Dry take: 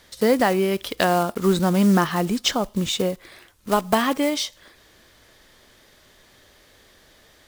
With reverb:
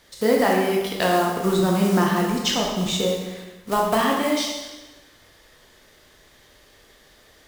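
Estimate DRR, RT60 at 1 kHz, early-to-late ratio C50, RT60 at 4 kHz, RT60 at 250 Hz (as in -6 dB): -2.0 dB, 1.1 s, 1.5 dB, 1.1 s, 1.1 s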